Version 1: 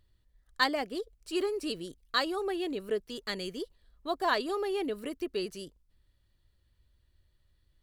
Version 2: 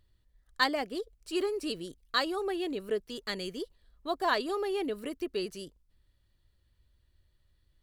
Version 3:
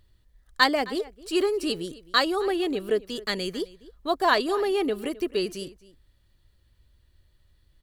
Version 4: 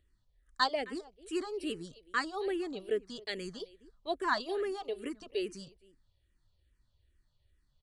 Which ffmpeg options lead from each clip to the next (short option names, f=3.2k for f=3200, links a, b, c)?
-af anull
-filter_complex "[0:a]asplit=2[a][b];[b]adelay=262.4,volume=-19dB,highshelf=f=4k:g=-5.9[c];[a][c]amix=inputs=2:normalize=0,volume=7dB"
-filter_complex "[0:a]aresample=22050,aresample=44100,asplit=2[a][b];[b]afreqshift=-2.4[c];[a][c]amix=inputs=2:normalize=1,volume=-7dB"